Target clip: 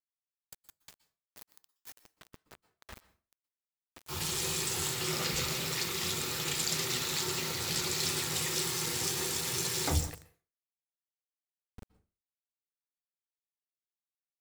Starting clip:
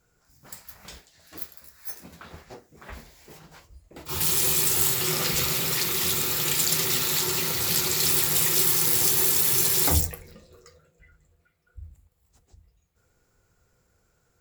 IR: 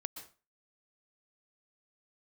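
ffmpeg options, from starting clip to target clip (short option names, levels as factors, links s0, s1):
-filter_complex "[0:a]acrossover=split=8600[s0][s1];[s1]acompressor=threshold=0.0141:ratio=4:attack=1:release=60[s2];[s0][s2]amix=inputs=2:normalize=0,aeval=exprs='val(0)*gte(abs(val(0)),0.0178)':c=same,asplit=2[s3][s4];[1:a]atrim=start_sample=2205[s5];[s4][s5]afir=irnorm=-1:irlink=0,volume=0.562[s6];[s3][s6]amix=inputs=2:normalize=0,volume=0.376"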